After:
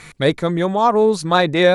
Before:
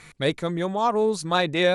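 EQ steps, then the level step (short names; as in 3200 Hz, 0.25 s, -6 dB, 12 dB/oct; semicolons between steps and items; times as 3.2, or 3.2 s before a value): dynamic EQ 2800 Hz, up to -6 dB, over -42 dBFS, Q 2.9; dynamic EQ 8100 Hz, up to -5 dB, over -47 dBFS, Q 0.76; +7.5 dB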